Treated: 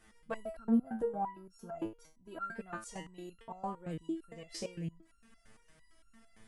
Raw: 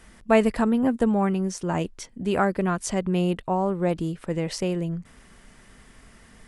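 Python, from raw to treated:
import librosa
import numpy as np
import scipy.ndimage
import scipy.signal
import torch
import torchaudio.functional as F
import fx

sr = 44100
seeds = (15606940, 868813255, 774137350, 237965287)

y = fx.spec_box(x, sr, start_s=0.37, length_s=2.04, low_hz=1700.0, high_hz=10000.0, gain_db=-10)
y = 10.0 ** (-9.0 / 20.0) * np.tanh(y / 10.0 ** (-9.0 / 20.0))
y = fx.resonator_held(y, sr, hz=8.8, low_hz=110.0, high_hz=1400.0)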